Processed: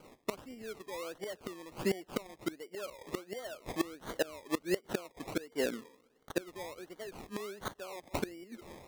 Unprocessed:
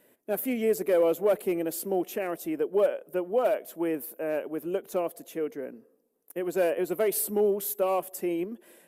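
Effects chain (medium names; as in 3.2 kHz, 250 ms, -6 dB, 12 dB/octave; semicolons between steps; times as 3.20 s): decimation with a swept rate 24×, swing 60% 1.4 Hz; inverted gate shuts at -25 dBFS, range -24 dB; trim +5 dB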